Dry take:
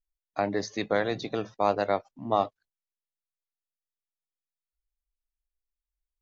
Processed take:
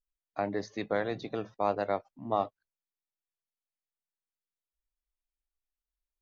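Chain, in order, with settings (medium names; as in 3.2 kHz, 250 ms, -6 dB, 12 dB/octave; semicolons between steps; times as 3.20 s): treble shelf 4.8 kHz -11.5 dB; trim -4 dB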